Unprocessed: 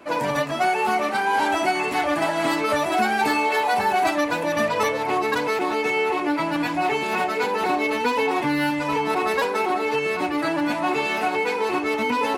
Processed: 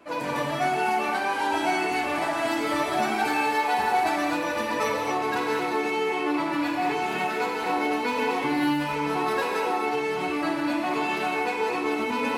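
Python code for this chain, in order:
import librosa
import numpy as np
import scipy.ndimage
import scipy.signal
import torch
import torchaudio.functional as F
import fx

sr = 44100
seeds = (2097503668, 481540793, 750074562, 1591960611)

y = fx.rev_gated(x, sr, seeds[0], gate_ms=290, shape='flat', drr_db=-1.5)
y = y * librosa.db_to_amplitude(-7.0)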